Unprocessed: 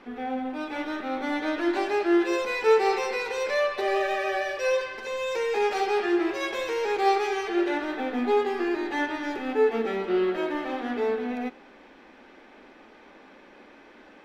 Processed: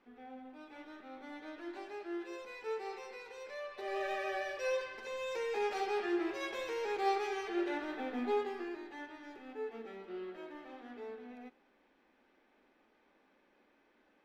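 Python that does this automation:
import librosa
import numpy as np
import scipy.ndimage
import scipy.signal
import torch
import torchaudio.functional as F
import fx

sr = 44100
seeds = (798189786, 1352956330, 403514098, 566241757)

y = fx.gain(x, sr, db=fx.line((3.63, -19.5), (4.08, -10.0), (8.34, -10.0), (8.96, -19.5)))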